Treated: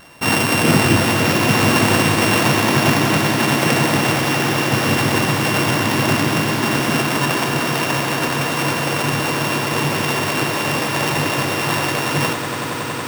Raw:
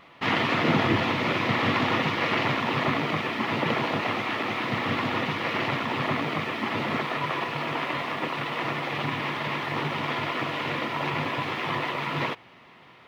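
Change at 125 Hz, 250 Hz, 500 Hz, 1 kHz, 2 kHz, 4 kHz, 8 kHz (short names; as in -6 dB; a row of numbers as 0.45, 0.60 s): +12.5, +10.5, +9.5, +7.5, +8.5, +10.5, +27.0 dB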